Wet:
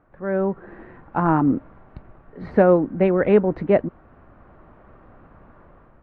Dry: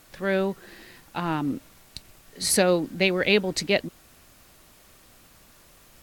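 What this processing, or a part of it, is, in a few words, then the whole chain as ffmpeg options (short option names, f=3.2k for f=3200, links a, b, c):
action camera in a waterproof case: -af "lowpass=f=1.4k:w=0.5412,lowpass=f=1.4k:w=1.3066,dynaudnorm=f=200:g=5:m=11dB,volume=-1.5dB" -ar 48000 -c:a aac -b:a 48k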